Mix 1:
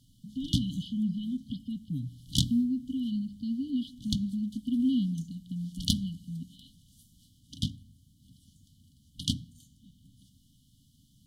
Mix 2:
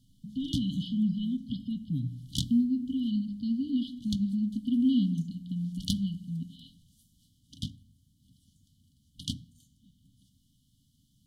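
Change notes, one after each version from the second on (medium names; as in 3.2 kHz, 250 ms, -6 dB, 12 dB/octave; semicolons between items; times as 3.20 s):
speech: send +9.0 dB; background -5.0 dB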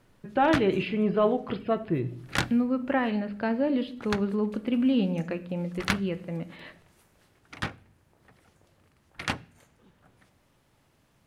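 master: remove brick-wall FIR band-stop 290–2900 Hz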